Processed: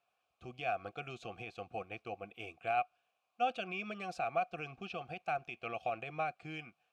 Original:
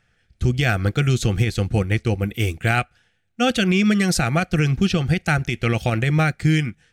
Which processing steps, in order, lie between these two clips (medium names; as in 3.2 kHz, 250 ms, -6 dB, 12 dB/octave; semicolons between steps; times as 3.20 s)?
word length cut 10-bit, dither triangular; vowel filter a; trim -4.5 dB